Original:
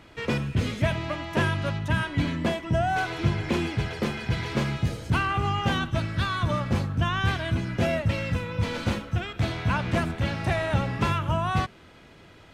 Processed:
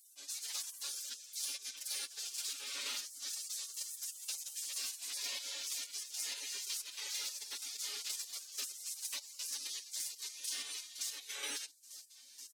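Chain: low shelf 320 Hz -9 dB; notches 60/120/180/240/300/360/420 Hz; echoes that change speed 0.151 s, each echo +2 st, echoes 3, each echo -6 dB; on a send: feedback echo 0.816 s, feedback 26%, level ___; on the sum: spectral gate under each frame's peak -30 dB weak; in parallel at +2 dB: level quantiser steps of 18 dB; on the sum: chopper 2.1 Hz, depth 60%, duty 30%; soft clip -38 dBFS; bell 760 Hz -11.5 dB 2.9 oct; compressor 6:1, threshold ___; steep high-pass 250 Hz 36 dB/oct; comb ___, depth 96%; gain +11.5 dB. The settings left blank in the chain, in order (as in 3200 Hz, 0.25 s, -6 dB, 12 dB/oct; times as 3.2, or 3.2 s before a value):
-20.5 dB, -52 dBFS, 7.1 ms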